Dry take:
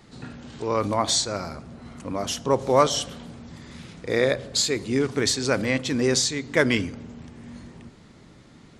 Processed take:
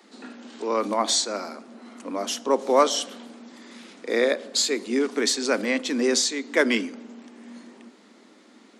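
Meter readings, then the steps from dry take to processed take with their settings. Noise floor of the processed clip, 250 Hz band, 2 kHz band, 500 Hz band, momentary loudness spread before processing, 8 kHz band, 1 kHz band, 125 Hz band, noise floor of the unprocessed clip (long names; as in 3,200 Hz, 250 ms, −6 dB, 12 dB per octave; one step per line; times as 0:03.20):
−54 dBFS, −0.5 dB, 0.0 dB, 0.0 dB, 21 LU, 0.0 dB, 0.0 dB, below −15 dB, −50 dBFS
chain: Butterworth high-pass 210 Hz 72 dB per octave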